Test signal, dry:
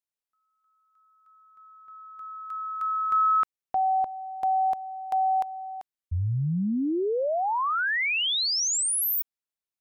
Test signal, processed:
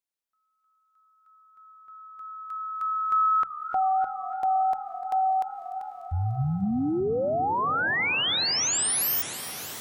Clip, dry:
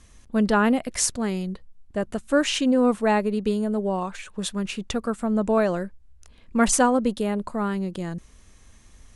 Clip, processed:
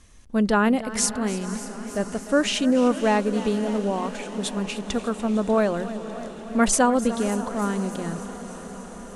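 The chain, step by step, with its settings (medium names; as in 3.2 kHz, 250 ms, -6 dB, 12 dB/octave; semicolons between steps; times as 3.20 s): hum notches 60/120/180 Hz; on a send: echo that smears into a reverb 533 ms, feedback 74%, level -15.5 dB; on the sum: modulated delay 297 ms, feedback 70%, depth 98 cents, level -16 dB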